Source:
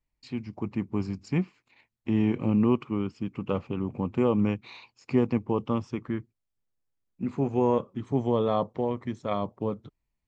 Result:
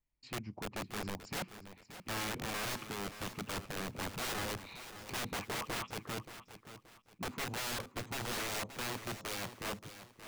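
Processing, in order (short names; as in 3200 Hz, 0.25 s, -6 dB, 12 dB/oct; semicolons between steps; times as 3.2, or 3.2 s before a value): 5.29–5.88 dispersion highs, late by 88 ms, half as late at 720 Hz; wrapped overs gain 27.5 dB; lo-fi delay 0.577 s, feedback 35%, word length 11-bit, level -12 dB; gain -5.5 dB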